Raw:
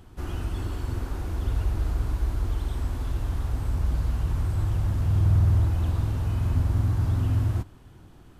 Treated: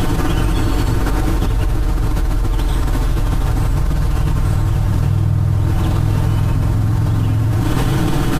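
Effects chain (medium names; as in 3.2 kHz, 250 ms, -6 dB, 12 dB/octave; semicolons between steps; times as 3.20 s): comb 6.6 ms, depth 69%; level flattener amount 100%; trim +3.5 dB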